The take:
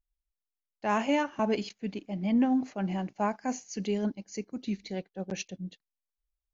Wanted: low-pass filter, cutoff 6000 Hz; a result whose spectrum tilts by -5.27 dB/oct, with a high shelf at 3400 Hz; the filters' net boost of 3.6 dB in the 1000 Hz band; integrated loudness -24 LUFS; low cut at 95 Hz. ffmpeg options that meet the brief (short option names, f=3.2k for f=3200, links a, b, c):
-af "highpass=95,lowpass=6k,equalizer=f=1k:t=o:g=4,highshelf=f=3.4k:g=5,volume=6.5dB"